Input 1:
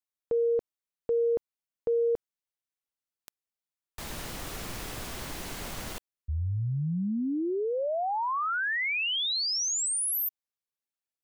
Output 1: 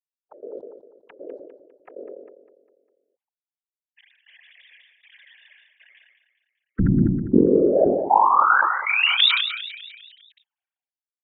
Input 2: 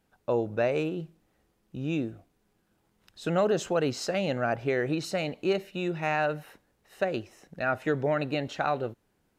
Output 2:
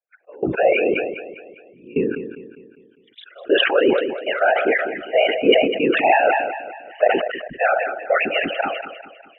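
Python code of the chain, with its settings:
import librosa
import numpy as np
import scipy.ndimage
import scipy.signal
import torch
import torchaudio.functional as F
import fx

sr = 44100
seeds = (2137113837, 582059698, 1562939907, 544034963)

p1 = fx.sine_speech(x, sr)
p2 = fx.noise_reduce_blind(p1, sr, reduce_db=29)
p3 = fx.over_compress(p2, sr, threshold_db=-30.0, ratio=-0.5)
p4 = p2 + (p3 * librosa.db_to_amplitude(1.5))
p5 = fx.whisperise(p4, sr, seeds[0])
p6 = fx.step_gate(p5, sr, bpm=176, pattern='xx...xxxx', floor_db=-24.0, edge_ms=4.5)
p7 = p6 + fx.echo_feedback(p6, sr, ms=201, feedback_pct=49, wet_db=-12, dry=0)
p8 = fx.sustainer(p7, sr, db_per_s=51.0)
y = p8 * librosa.db_to_amplitude(6.5)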